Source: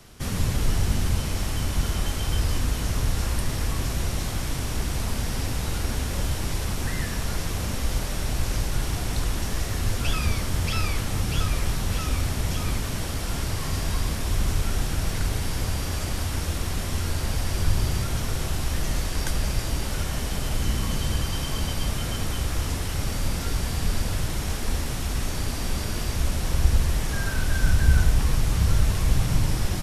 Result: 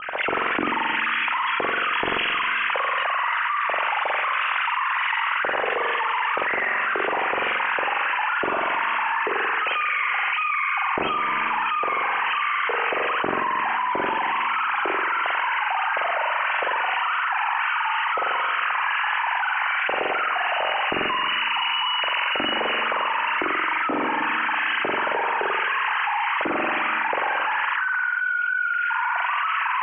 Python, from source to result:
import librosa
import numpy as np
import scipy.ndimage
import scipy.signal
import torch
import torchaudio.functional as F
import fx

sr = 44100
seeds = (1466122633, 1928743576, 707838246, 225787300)

p1 = fx.sine_speech(x, sr)
p2 = fx.doppler_pass(p1, sr, speed_mps=21, closest_m=22.0, pass_at_s=7.84)
p3 = scipy.signal.sosfilt(scipy.signal.butter(12, 2900.0, 'lowpass', fs=sr, output='sos'), p2)
p4 = fx.high_shelf(p3, sr, hz=2200.0, db=-12.0)
p5 = fx.hum_notches(p4, sr, base_hz=50, count=9)
p6 = p5 + fx.room_flutter(p5, sr, wall_m=7.6, rt60_s=0.82, dry=0)
p7 = fx.rev_spring(p6, sr, rt60_s=2.2, pass_ms=(31, 57), chirp_ms=55, drr_db=12.5)
p8 = fx.env_flatten(p7, sr, amount_pct=100)
y = F.gain(torch.from_numpy(p8), -4.0).numpy()